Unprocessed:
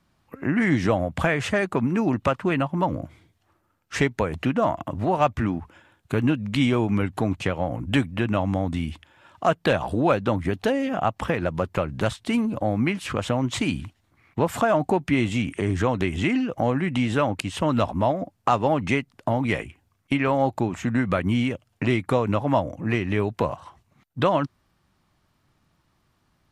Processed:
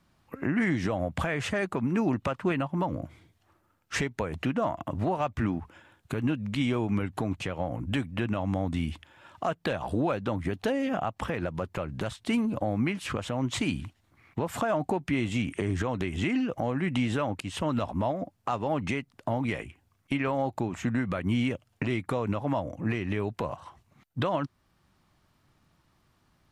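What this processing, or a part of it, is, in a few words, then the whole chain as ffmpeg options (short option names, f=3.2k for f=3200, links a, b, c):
stacked limiters: -af "alimiter=limit=-12dB:level=0:latency=1:release=112,alimiter=limit=-18dB:level=0:latency=1:release=483"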